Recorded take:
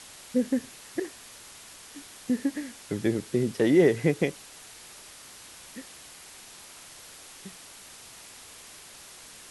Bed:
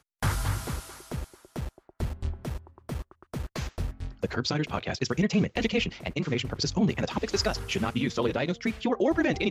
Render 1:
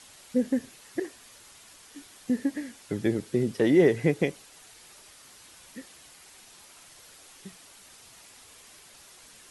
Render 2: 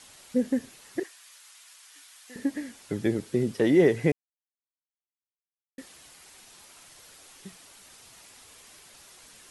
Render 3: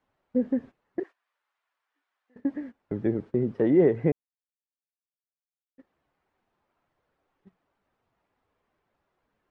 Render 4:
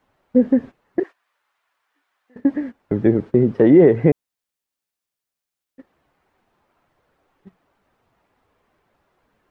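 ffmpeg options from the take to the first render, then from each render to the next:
-af "afftdn=nr=6:nf=-48"
-filter_complex "[0:a]asettb=1/sr,asplit=3[s0][s1][s2];[s0]atrim=end=1.034[s3];[s1]atrim=start=1.03:end=2.36,asetpts=PTS-STARTPTS,afade=t=in:d=0.004:c=qsin,afade=t=out:st=1.326:d=0.004:c=qsin,highpass=1200[s4];[s2]atrim=start=2.356[s5];[s3][s4]acrossfade=d=0.004:c1=hsin:c2=qsin[s6];[s6][s5]acrossfade=d=0.004:c1=qsin:c2=hsin,asplit=3[s7][s8][s9];[s7]atrim=end=4.12,asetpts=PTS-STARTPTS,afade=t=out:st=4.116:d=0.004:c=hsin[s10];[s8]atrim=start=4.12:end=5.78,asetpts=PTS-STARTPTS,volume=0[s11];[s9]atrim=start=5.78,asetpts=PTS-STARTPTS,afade=t=in:d=0.004:c=hsin[s12];[s10][s11][s12]concat=n=3:v=0:a=1"
-af "agate=range=0.158:threshold=0.0112:ratio=16:detection=peak,lowpass=1200"
-af "volume=3.35,alimiter=limit=0.708:level=0:latency=1"

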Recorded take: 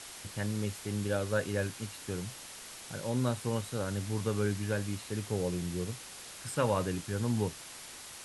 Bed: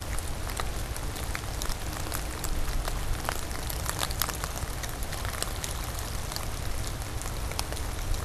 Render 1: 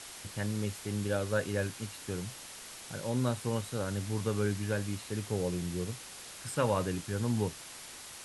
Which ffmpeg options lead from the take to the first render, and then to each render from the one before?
-af anull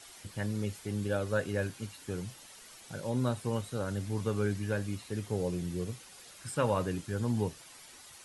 -af "afftdn=nr=9:nf=-48"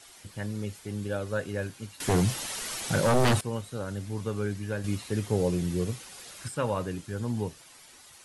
-filter_complex "[0:a]asettb=1/sr,asplit=3[s0][s1][s2];[s0]atrim=end=2.004[s3];[s1]atrim=start=2:end=3.41,asetpts=PTS-STARTPTS,afade=t=in:d=0.004:c=qsin,afade=t=out:st=1.406:d=0.004:c=qsin,aeval=exprs='0.126*sin(PI/2*4.47*val(0)/0.126)':c=same[s4];[s2]atrim=start=3.406[s5];[s3][s4]acrossfade=d=0.004:c1=hsin:c2=qsin[s6];[s6][s5]acrossfade=d=0.004:c1=qsin:c2=hsin,asplit=3[s7][s8][s9];[s7]atrim=end=4.842[s10];[s8]atrim=start=4.838:end=6.482,asetpts=PTS-STARTPTS,volume=2.11[s11];[s9]atrim=start=6.478[s12];[s10][s11]acrossfade=d=0.004:c1=hsin:c2=hsin[s13];[s13][s12]acrossfade=d=0.004:c1=hsin:c2=hsin"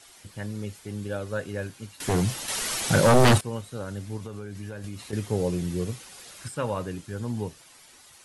-filter_complex "[0:a]asettb=1/sr,asplit=3[s0][s1][s2];[s0]atrim=end=2.484[s3];[s1]atrim=start=2.48:end=3.38,asetpts=PTS-STARTPTS,afade=t=in:d=0.004:c=qsin,afade=t=out:st=0.896:d=0.004:c=qsin,acontrast=48[s4];[s2]atrim=start=3.376[s5];[s3][s4]acrossfade=d=0.004:c1=hsin:c2=qsin[s6];[s6][s5]acrossfade=d=0.004:c1=qsin:c2=hsin,asettb=1/sr,asplit=3[s7][s8][s9];[s7]atrim=end=4.174[s10];[s8]atrim=start=4.17:end=5.13,asetpts=PTS-STARTPTS,afade=t=in:d=0.004:c=qsin,afade=t=out:st=0.956:d=0.004:c=qsin,acompressor=threshold=0.0251:ratio=10:attack=3.2:release=140:knee=1:detection=peak[s11];[s9]atrim=start=5.126[s12];[s10][s11]acrossfade=d=0.004:c1=hsin:c2=qsin[s13];[s13][s12]acrossfade=d=0.004:c1=qsin:c2=hsin"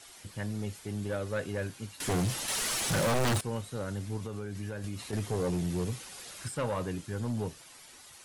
-af "asoftclip=type=tanh:threshold=0.0531"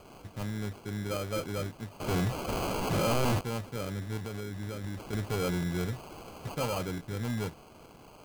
-af "acrusher=samples=24:mix=1:aa=0.000001"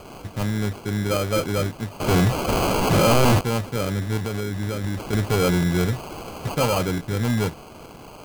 -af "volume=3.55"

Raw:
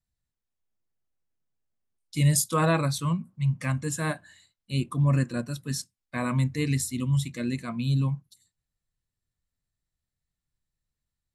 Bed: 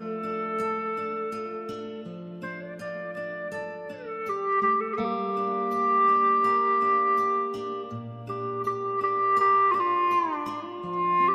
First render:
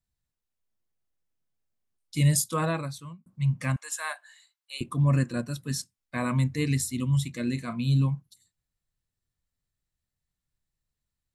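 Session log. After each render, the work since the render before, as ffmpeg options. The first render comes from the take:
-filter_complex "[0:a]asettb=1/sr,asplit=3[s0][s1][s2];[s0]atrim=end=3.764[s3];[s1]atrim=start=3.76:end=4.81,asetpts=PTS-STARTPTS,afade=t=in:d=0.004:c=qsin,afade=t=out:st=1.046:d=0.004:c=qsin,highpass=f=770:w=0.5412,highpass=f=770:w=1.3066[s4];[s2]atrim=start=4.806[s5];[s3][s4]acrossfade=d=0.004:c1=hsin:c2=qsin[s6];[s6][s5]acrossfade=d=0.004:c1=qsin:c2=hsin,asettb=1/sr,asplit=3[s7][s8][s9];[s7]atrim=end=7.434[s10];[s8]atrim=start=7.43:end=8.06,asetpts=PTS-STARTPTS,afade=t=in:d=0.004:c=qsin,afade=t=out:st=0.626:d=0.004:c=qsin,asplit=2[s11][s12];[s12]adelay=37,volume=0.266[s13];[s11][s13]amix=inputs=2:normalize=0,atrim=end_sample=27783[s14];[s9]atrim=start=8.056[s15];[s10][s14]acrossfade=d=0.004:c1=hsin:c2=qsin[s16];[s16][s15]acrossfade=d=0.004:c1=qsin:c2=hsin,asplit=2[s17][s18];[s17]atrim=end=3.26,asetpts=PTS-STARTPTS,afade=t=out:st=2.25:d=1.01[s19];[s18]atrim=start=3.26,asetpts=PTS-STARTPTS,afade=t=in:d=0.004:c=hsin[s20];[s19][s20]concat=n=2:v=0:a=1"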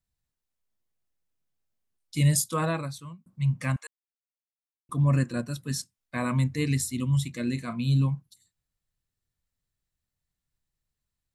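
-filter_complex "[0:a]asplit=3[s0][s1][s2];[s0]atrim=end=3.87,asetpts=PTS-STARTPTS,afade=t=out:st=3.866:d=0.004:c=hsin[s3];[s1]atrim=start=3.87:end=4.89,asetpts=PTS-STARTPTS,volume=0[s4];[s2]atrim=start=4.89,asetpts=PTS-STARTPTS,afade=t=in:d=0.004:c=hsin[s5];[s3][s4][s5]concat=n=3:v=0:a=1"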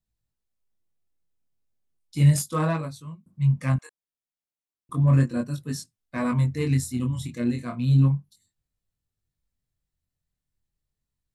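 -filter_complex "[0:a]flanger=delay=19:depth=6.1:speed=0.34,asplit=2[s0][s1];[s1]adynamicsmooth=sensitivity=3.5:basefreq=910,volume=0.891[s2];[s0][s2]amix=inputs=2:normalize=0"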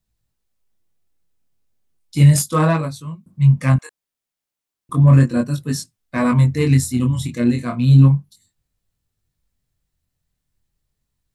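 -af "volume=2.66,alimiter=limit=0.708:level=0:latency=1"

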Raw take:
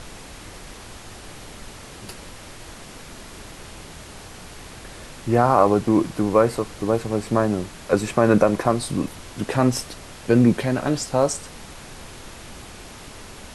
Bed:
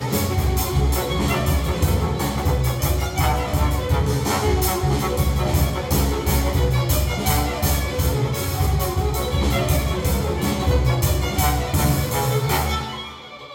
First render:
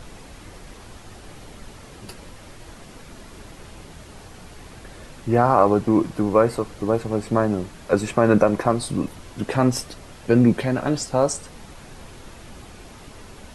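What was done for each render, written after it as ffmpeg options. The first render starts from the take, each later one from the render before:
-af "afftdn=nr=6:nf=-41"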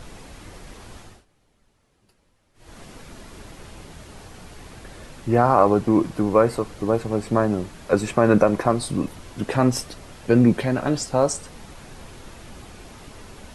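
-filter_complex "[0:a]asplit=3[s0][s1][s2];[s0]atrim=end=1.25,asetpts=PTS-STARTPTS,afade=t=out:st=1:d=0.25:silence=0.0668344[s3];[s1]atrim=start=1.25:end=2.54,asetpts=PTS-STARTPTS,volume=0.0668[s4];[s2]atrim=start=2.54,asetpts=PTS-STARTPTS,afade=t=in:d=0.25:silence=0.0668344[s5];[s3][s4][s5]concat=n=3:v=0:a=1"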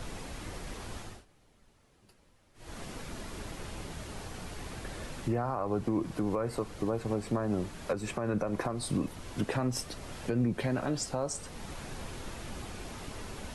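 -filter_complex "[0:a]acrossover=split=120[s0][s1];[s1]acompressor=threshold=0.112:ratio=5[s2];[s0][s2]amix=inputs=2:normalize=0,alimiter=limit=0.0891:level=0:latency=1:release=494"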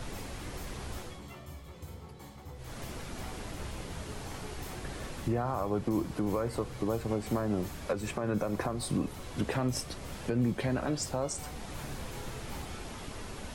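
-filter_complex "[1:a]volume=0.0473[s0];[0:a][s0]amix=inputs=2:normalize=0"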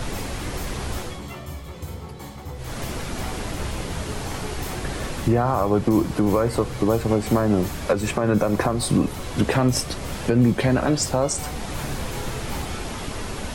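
-af "volume=3.76"

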